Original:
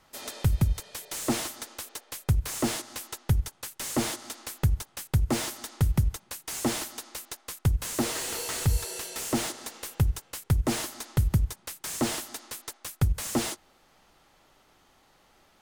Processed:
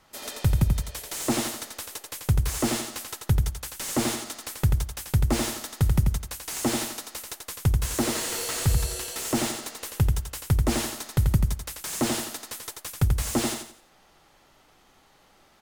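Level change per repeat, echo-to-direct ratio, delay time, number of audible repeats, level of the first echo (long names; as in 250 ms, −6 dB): −10.0 dB, −4.5 dB, 87 ms, 4, −5.0 dB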